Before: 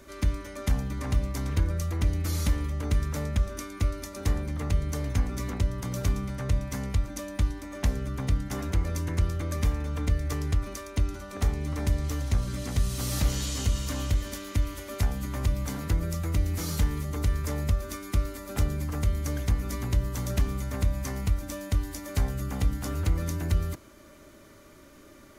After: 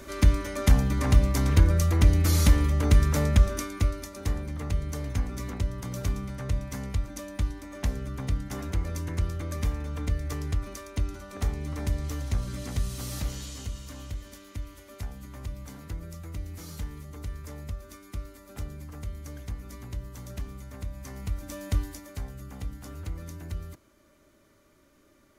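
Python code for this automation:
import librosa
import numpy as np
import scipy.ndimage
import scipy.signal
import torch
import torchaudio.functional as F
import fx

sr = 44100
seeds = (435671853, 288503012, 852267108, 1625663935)

y = fx.gain(x, sr, db=fx.line((3.45, 6.5), (4.16, -2.5), (12.72, -2.5), (13.81, -10.5), (20.91, -10.5), (21.77, 0.0), (22.17, -10.0)))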